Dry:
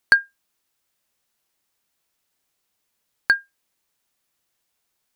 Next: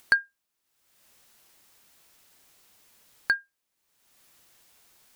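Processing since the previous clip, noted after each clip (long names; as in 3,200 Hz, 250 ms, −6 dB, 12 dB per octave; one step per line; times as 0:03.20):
upward compression, threshold −36 dBFS
level −6.5 dB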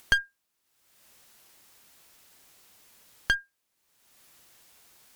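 asymmetric clip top −29.5 dBFS
level +2.5 dB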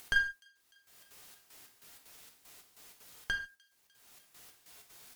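gate pattern "x.xxx..xx..x" 190 BPM −12 dB
delay with a high-pass on its return 300 ms, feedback 68%, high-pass 3,600 Hz, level −22 dB
reverb whose tail is shaped and stops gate 170 ms falling, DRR 3 dB
level +1.5 dB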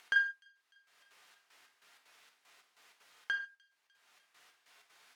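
resonant band-pass 1,600 Hz, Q 0.75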